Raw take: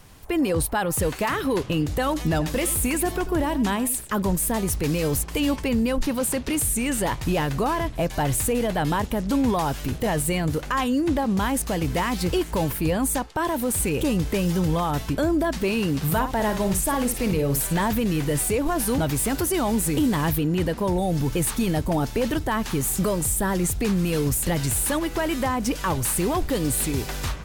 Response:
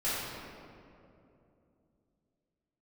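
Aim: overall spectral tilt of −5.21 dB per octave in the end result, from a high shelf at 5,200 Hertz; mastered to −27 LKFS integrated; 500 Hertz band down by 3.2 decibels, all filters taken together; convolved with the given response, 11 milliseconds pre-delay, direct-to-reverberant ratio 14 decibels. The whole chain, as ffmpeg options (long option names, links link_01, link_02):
-filter_complex "[0:a]equalizer=frequency=500:width_type=o:gain=-4,highshelf=frequency=5200:gain=-6,asplit=2[link_01][link_02];[1:a]atrim=start_sample=2205,adelay=11[link_03];[link_02][link_03]afir=irnorm=-1:irlink=0,volume=-23dB[link_04];[link_01][link_04]amix=inputs=2:normalize=0,volume=-1.5dB"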